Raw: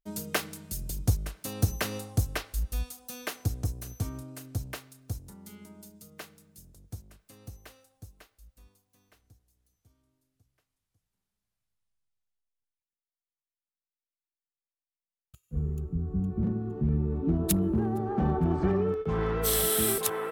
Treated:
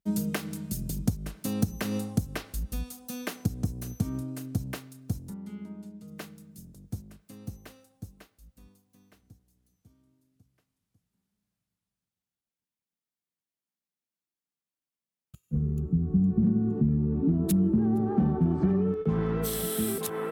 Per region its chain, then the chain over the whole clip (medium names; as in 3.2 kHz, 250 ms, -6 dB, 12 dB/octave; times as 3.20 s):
5.34–6.08 s: tone controls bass -4 dB, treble -13 dB + decimation joined by straight lines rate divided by 2×
whole clip: high-pass 41 Hz; compression, threshold -30 dBFS; peaking EQ 200 Hz +12.5 dB 1.4 oct